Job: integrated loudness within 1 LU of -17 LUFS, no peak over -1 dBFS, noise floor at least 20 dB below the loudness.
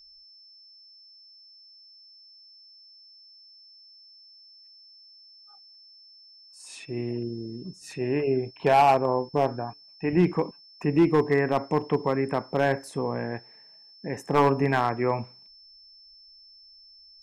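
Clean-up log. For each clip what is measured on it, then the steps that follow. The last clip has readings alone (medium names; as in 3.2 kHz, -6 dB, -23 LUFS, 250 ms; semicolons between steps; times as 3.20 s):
clipped samples 0.4%; clipping level -13.0 dBFS; steady tone 5.3 kHz; tone level -50 dBFS; loudness -25.5 LUFS; peak level -13.0 dBFS; loudness target -17.0 LUFS
-> clip repair -13 dBFS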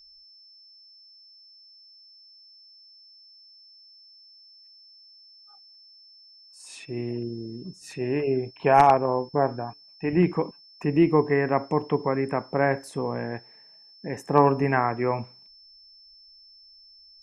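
clipped samples 0.0%; steady tone 5.3 kHz; tone level -50 dBFS
-> band-stop 5.3 kHz, Q 30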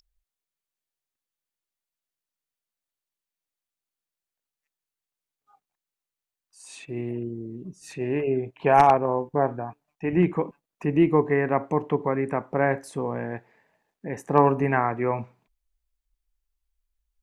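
steady tone not found; loudness -24.5 LUFS; peak level -4.0 dBFS; loudness target -17.0 LUFS
-> trim +7.5 dB; peak limiter -1 dBFS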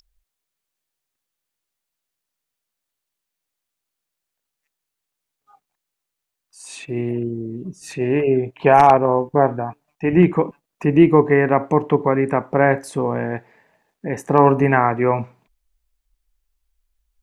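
loudness -17.5 LUFS; peak level -1.0 dBFS; noise floor -82 dBFS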